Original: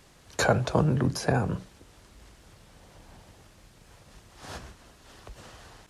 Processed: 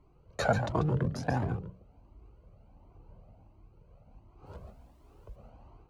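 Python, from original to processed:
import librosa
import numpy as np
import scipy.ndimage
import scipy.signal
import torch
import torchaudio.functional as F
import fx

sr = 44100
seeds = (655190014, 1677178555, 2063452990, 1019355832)

p1 = fx.wiener(x, sr, points=25)
p2 = fx.high_shelf(p1, sr, hz=5400.0, db=-10.5)
p3 = fx.dmg_noise_colour(p2, sr, seeds[0], colour='pink', level_db=-71.0, at=(4.45, 5.35), fade=0.02)
p4 = p3 + fx.echo_single(p3, sr, ms=140, db=-8.5, dry=0)
y = fx.comb_cascade(p4, sr, direction='rising', hz=1.4)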